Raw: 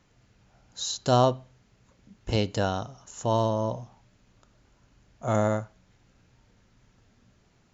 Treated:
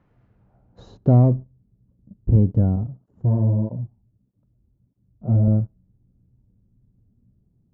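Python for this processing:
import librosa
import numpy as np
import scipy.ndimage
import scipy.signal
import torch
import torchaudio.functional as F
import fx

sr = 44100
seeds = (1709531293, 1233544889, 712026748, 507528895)

y = fx.peak_eq(x, sr, hz=130.0, db=3.0, octaves=2.1)
y = fx.leveller(y, sr, passes=2)
y = fx.filter_sweep_lowpass(y, sr, from_hz=1500.0, to_hz=230.0, start_s=0.21, end_s=1.35, q=0.73)
y = fx.flanger_cancel(y, sr, hz=1.6, depth_ms=7.8, at=(2.76, 5.48))
y = F.gain(torch.from_numpy(y), 4.5).numpy()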